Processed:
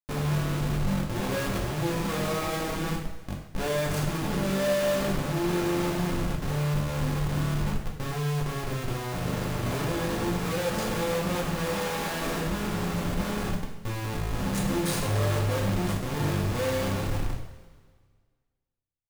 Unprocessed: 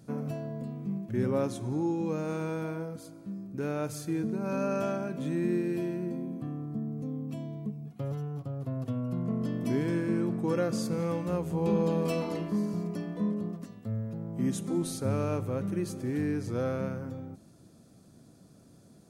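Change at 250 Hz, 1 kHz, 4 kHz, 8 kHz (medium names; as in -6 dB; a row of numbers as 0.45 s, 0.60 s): 0.0 dB, +8.5 dB, +14.5 dB, +9.5 dB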